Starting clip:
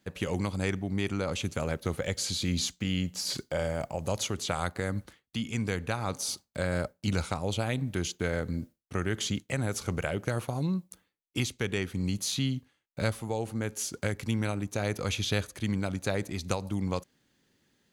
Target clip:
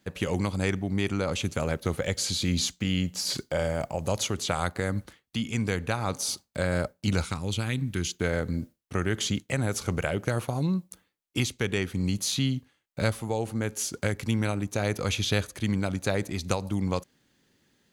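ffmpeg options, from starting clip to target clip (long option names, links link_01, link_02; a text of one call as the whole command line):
ffmpeg -i in.wav -filter_complex "[0:a]asettb=1/sr,asplit=3[link_01][link_02][link_03];[link_01]atrim=end=7.244[link_04];[link_02]atrim=start=7.24:end=8.2,asetpts=PTS-STARTPTS,afade=type=in:duration=0.004:curve=qsin,afade=type=out:start_time=0.956:duration=0.004:curve=qsin,equalizer=frequency=650:width_type=o:width=1:gain=-13[link_05];[link_03]atrim=start=8.196[link_06];[link_04][link_05]acrossfade=duration=0.004:curve1=hsin:curve2=qsin[link_07];[link_07][link_06]acrossfade=duration=0.004:curve1=qsin:curve2=hsin,volume=3dB" out.wav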